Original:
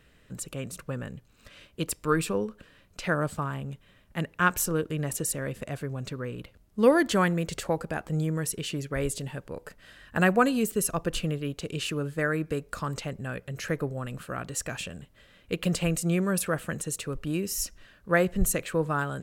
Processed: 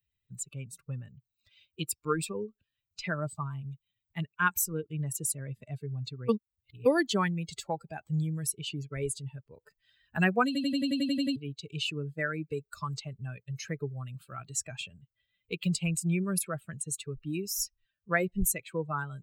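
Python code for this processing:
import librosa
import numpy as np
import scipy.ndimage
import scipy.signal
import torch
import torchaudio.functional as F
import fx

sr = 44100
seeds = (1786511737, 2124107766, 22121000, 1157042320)

y = fx.edit(x, sr, fx.reverse_span(start_s=6.29, length_s=0.57),
    fx.stutter_over(start_s=10.46, slice_s=0.09, count=10), tone=tone)
y = fx.bin_expand(y, sr, power=2.0)
y = fx.high_shelf(y, sr, hz=5300.0, db=6.0)
y = fx.band_squash(y, sr, depth_pct=40)
y = y * librosa.db_to_amplitude(1.5)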